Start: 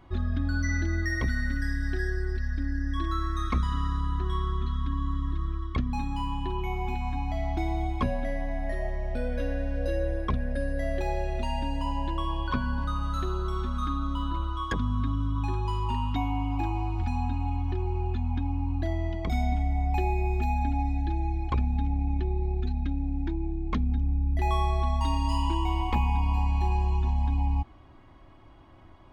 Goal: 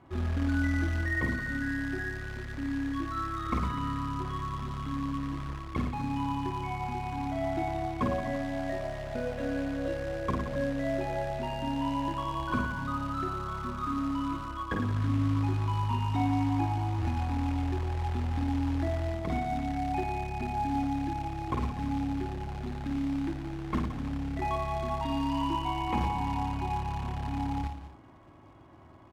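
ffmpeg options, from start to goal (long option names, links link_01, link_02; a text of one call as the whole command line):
ffmpeg -i in.wav -af "lowpass=3500,aecho=1:1:50|107.5|173.6|249.7|337.1:0.631|0.398|0.251|0.158|0.1,acrusher=bits=4:mode=log:mix=0:aa=0.000001,highpass=94,aemphasis=mode=reproduction:type=75fm,volume=-1.5dB" out.wav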